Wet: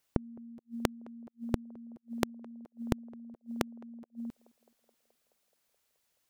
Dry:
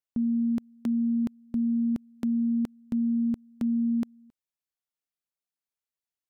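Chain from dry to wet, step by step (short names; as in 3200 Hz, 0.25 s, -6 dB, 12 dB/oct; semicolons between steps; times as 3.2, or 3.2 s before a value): flipped gate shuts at -31 dBFS, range -38 dB; narrowing echo 0.213 s, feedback 77%, band-pass 580 Hz, level -22.5 dB; gain +16 dB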